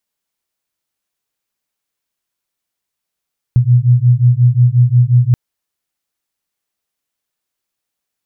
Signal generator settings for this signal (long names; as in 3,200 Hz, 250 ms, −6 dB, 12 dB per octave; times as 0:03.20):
two tones that beat 120 Hz, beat 5.6 Hz, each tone −10 dBFS 1.78 s